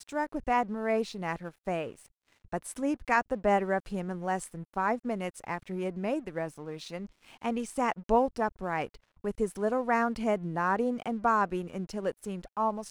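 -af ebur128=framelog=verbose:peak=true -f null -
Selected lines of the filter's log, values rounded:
Integrated loudness:
  I:         -31.3 LUFS
  Threshold: -41.6 LUFS
Loudness range:
  LRA:         4.5 LU
  Threshold: -51.5 LUFS
  LRA low:   -34.5 LUFS
  LRA high:  -29.9 LUFS
True peak:
  Peak:      -11.8 dBFS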